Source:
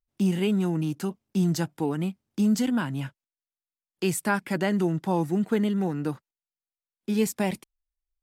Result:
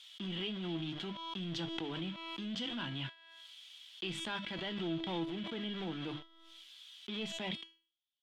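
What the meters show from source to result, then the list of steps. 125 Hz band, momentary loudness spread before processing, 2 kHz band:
-15.5 dB, 8 LU, -9.5 dB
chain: high-pass 54 Hz 6 dB/octave; hum notches 50/100/150/200/250/300 Hz; reverse; compression 8:1, threshold -32 dBFS, peak gain reduction 13.5 dB; reverse; small samples zeroed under -43 dBFS; added noise violet -76 dBFS; waveshaping leveller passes 1; resonant low-pass 3.3 kHz, resonance Q 9.6; feedback comb 330 Hz, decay 0.41 s, harmonics all, mix 80%; swell ahead of each attack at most 27 dB/s; trim +3 dB

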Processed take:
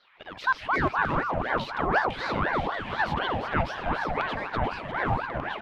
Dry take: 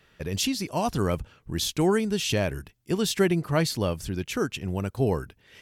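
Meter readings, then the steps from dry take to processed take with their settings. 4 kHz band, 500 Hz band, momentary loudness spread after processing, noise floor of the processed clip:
-7.0 dB, -4.5 dB, 5 LU, -45 dBFS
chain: in parallel at +1.5 dB: compression, threshold -37 dBFS, peak gain reduction 18.5 dB; on the sum: distance through air 420 m; LFO high-pass saw down 1.9 Hz 230–2900 Hz; on a send: feedback delay 350 ms, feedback 53%, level -7.5 dB; on the sum: ever faster or slower copies 95 ms, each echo -4 st, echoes 3; ring modulator with a swept carrier 830 Hz, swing 60%, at 4 Hz; trim -2 dB

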